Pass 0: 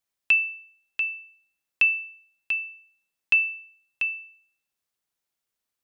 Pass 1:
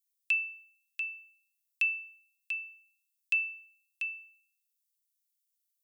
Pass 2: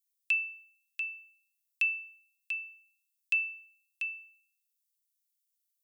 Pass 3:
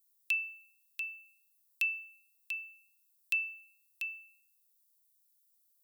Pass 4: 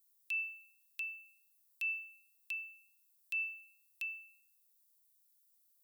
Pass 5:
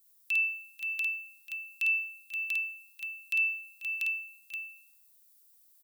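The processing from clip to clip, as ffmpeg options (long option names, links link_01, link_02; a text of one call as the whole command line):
ffmpeg -i in.wav -af "aderivative" out.wav
ffmpeg -i in.wav -af anull out.wav
ffmpeg -i in.wav -af "aexciter=amount=2.3:drive=5.9:freq=3600,volume=-3dB" out.wav
ffmpeg -i in.wav -af "alimiter=level_in=4dB:limit=-24dB:level=0:latency=1:release=93,volume=-4dB" out.wav
ffmpeg -i in.wav -af "aecho=1:1:52|490|525:0.708|0.178|0.562,volume=7dB" out.wav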